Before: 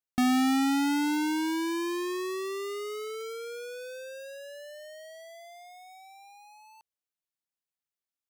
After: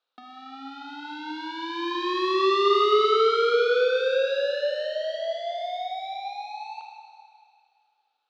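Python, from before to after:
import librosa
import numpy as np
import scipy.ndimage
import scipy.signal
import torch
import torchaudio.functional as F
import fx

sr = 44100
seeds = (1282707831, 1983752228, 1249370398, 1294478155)

y = fx.over_compress(x, sr, threshold_db=-34.0, ratio=-0.5)
y = fx.cabinet(y, sr, low_hz=310.0, low_slope=24, high_hz=4100.0, hz=(330.0, 510.0, 750.0, 1300.0, 2000.0, 3800.0), db=(-6, 4, 3, 8, -9, 8))
y = fx.rev_schroeder(y, sr, rt60_s=2.3, comb_ms=26, drr_db=2.5)
y = F.gain(torch.from_numpy(y), 8.5).numpy()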